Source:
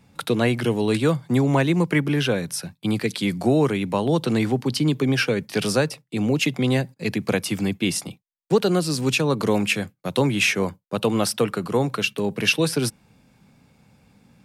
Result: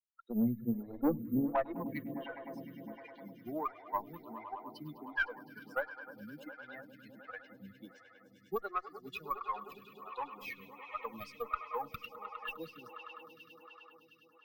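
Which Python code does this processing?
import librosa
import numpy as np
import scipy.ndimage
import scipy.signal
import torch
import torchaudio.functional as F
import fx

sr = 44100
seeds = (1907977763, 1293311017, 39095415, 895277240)

p1 = fx.bin_expand(x, sr, power=3.0)
p2 = fx.filter_sweep_bandpass(p1, sr, from_hz=210.0, to_hz=1200.0, start_s=0.75, end_s=2.22, q=4.8)
p3 = 10.0 ** (-30.0 / 20.0) * np.tanh(p2 / 10.0 ** (-30.0 / 20.0))
p4 = (np.kron(p3[::3], np.eye(3)[0]) * 3)[:len(p3)]
p5 = fx.air_absorb(p4, sr, metres=160.0)
p6 = p5 + fx.echo_swell(p5, sr, ms=102, loudest=5, wet_db=-17.0, dry=0)
p7 = fx.cheby_harmonics(p6, sr, harmonics=(2,), levels_db=(-13,), full_scale_db=-29.5)
p8 = fx.stagger_phaser(p7, sr, hz=1.4)
y = p8 * librosa.db_to_amplitude(9.5)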